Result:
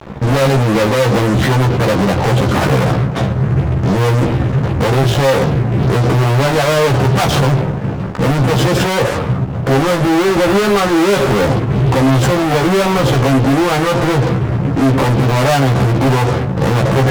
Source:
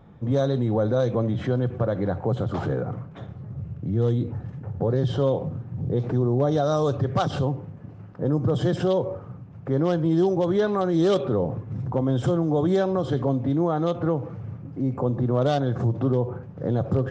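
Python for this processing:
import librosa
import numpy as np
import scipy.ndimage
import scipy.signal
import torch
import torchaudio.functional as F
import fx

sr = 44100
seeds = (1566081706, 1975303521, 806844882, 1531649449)

y = fx.fuzz(x, sr, gain_db=40.0, gate_db=-48.0)
y = fx.doubler(y, sr, ms=15.0, db=-3)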